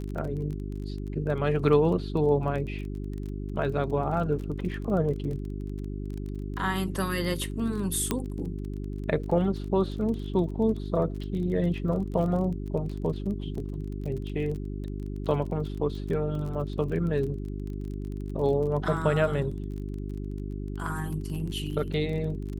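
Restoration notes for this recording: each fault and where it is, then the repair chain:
surface crackle 26 per second −35 dBFS
mains hum 50 Hz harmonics 8 −34 dBFS
0:08.11: click −11 dBFS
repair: click removal
hum removal 50 Hz, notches 8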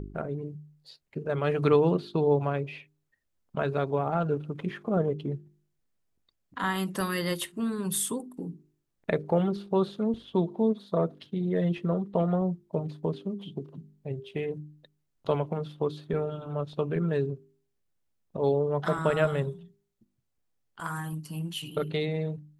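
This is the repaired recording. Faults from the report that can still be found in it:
none of them is left

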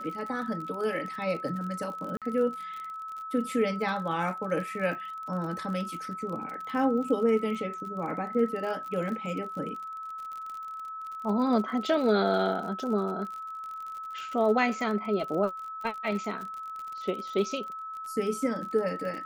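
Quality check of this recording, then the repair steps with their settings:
surface crackle 42 per second −36 dBFS
whistle 1,300 Hz −36 dBFS
0:02.17–0:02.22: drop-out 47 ms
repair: click removal
notch filter 1,300 Hz, Q 30
repair the gap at 0:02.17, 47 ms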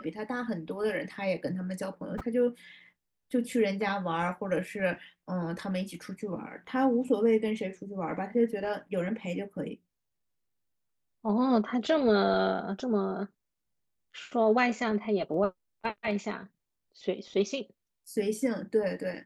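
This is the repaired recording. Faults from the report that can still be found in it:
none of them is left

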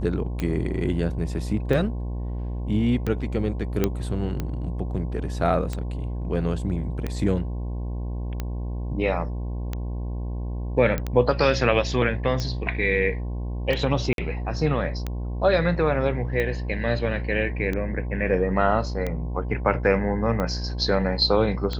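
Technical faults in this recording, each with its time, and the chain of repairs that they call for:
mains buzz 60 Hz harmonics 18 −29 dBFS
scratch tick 45 rpm −15 dBFS
0:03.84: click −8 dBFS
0:10.98: click −13 dBFS
0:14.13–0:14.18: drop-out 52 ms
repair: click removal
hum removal 60 Hz, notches 18
repair the gap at 0:14.13, 52 ms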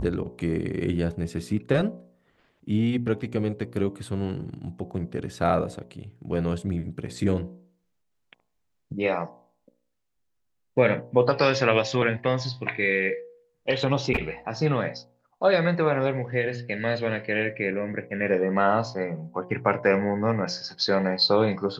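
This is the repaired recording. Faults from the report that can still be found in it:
none of them is left

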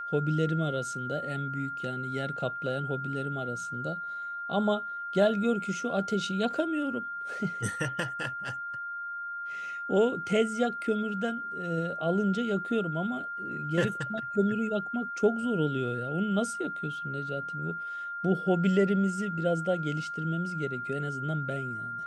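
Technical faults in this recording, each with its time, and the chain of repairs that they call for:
whistle 1,400 Hz −34 dBFS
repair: notch filter 1,400 Hz, Q 30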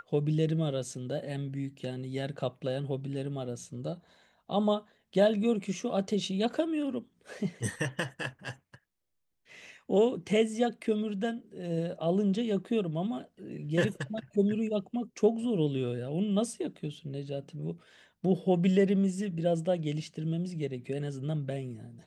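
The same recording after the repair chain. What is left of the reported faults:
none of them is left

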